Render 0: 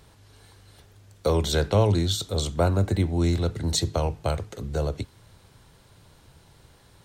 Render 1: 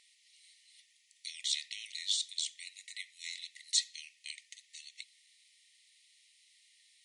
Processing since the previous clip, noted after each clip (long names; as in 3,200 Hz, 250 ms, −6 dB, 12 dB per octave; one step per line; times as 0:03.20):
brick-wall band-pass 1,800–11,000 Hz
level −3 dB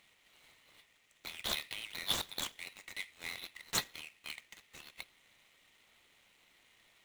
running median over 9 samples
level +5.5 dB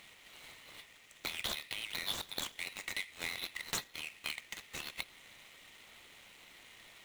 downward compressor 10 to 1, threshold −45 dBFS, peak gain reduction 17.5 dB
level +10 dB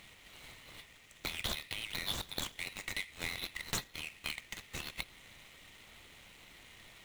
low-shelf EQ 180 Hz +11.5 dB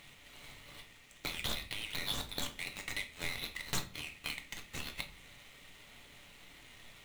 convolution reverb RT60 0.45 s, pre-delay 7 ms, DRR 5.5 dB
level −1 dB